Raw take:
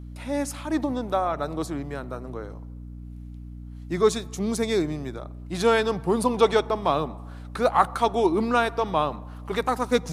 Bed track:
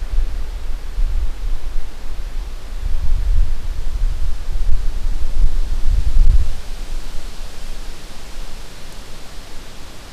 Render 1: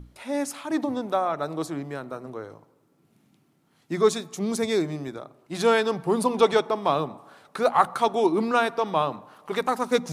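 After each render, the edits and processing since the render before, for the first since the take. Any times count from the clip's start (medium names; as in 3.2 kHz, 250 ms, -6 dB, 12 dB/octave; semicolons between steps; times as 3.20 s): hum notches 60/120/180/240/300 Hz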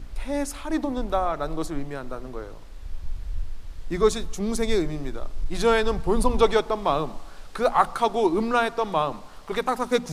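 add bed track -15 dB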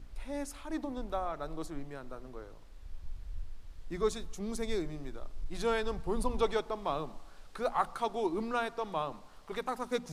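trim -11 dB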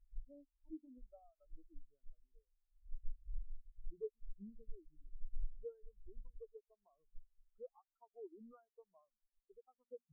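compression 8:1, threshold -38 dBFS, peak gain reduction 14.5 dB; spectral contrast expander 4:1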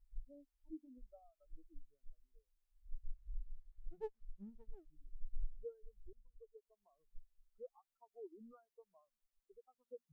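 3.03–4.90 s: sliding maximum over 17 samples; 6.13–6.84 s: fade in, from -23 dB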